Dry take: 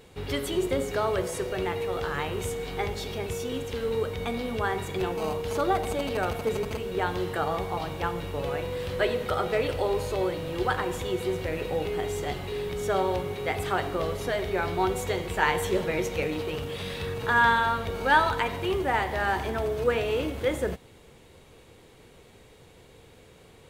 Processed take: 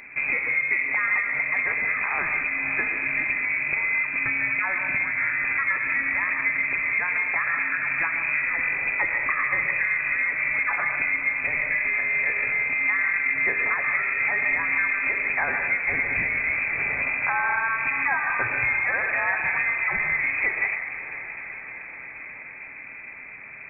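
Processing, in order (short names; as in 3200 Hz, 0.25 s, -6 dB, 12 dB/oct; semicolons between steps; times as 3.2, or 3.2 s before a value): HPF 140 Hz 6 dB/oct; tilt -2 dB/oct; notch 480 Hz, Q 15; compressor, threshold -32 dBFS, peak gain reduction 15.5 dB; on a send: diffused feedback echo 0.61 s, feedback 67%, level -13 dB; on the sum: digital reverb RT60 0.7 s, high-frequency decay 0.6×, pre-delay 85 ms, DRR 5 dB; inverted band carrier 2500 Hz; gain +9 dB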